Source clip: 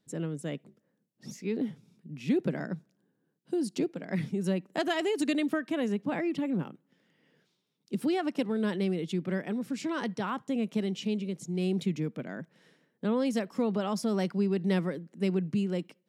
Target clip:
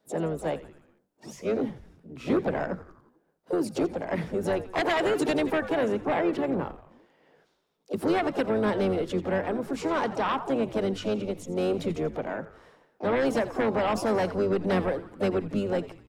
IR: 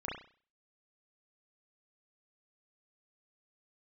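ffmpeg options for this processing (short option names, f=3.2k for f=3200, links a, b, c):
-filter_complex "[0:a]asplit=6[a][b][c][d][e][f];[b]adelay=86,afreqshift=-100,volume=-15dB[g];[c]adelay=172,afreqshift=-200,volume=-20dB[h];[d]adelay=258,afreqshift=-300,volume=-25.1dB[i];[e]adelay=344,afreqshift=-400,volume=-30.1dB[j];[f]adelay=430,afreqshift=-500,volume=-35.1dB[k];[a][g][h][i][j][k]amix=inputs=6:normalize=0,asplit=4[l][m][n][o];[m]asetrate=22050,aresample=44100,atempo=2,volume=-15dB[p];[n]asetrate=55563,aresample=44100,atempo=0.793701,volume=-12dB[q];[o]asetrate=66075,aresample=44100,atempo=0.66742,volume=-14dB[r];[l][p][q][r]amix=inputs=4:normalize=0,acrossover=split=450|1200[s][t][u];[s]flanger=delay=18:depth=5.1:speed=0.25[v];[t]aeval=exprs='0.0708*sin(PI/2*3.16*val(0)/0.0708)':c=same[w];[v][w][u]amix=inputs=3:normalize=0"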